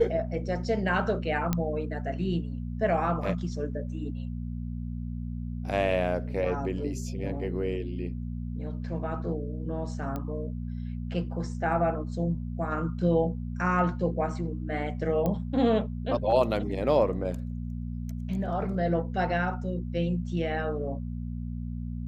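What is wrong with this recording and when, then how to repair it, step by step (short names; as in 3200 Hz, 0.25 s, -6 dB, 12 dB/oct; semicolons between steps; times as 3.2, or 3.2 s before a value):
hum 60 Hz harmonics 4 -34 dBFS
1.53 pop -12 dBFS
10.16 pop -21 dBFS
15.26 pop -17 dBFS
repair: de-click; de-hum 60 Hz, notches 4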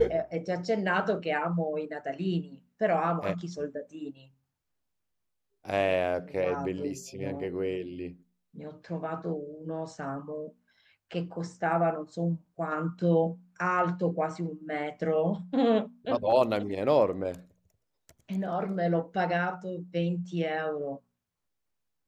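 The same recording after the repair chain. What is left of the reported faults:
15.26 pop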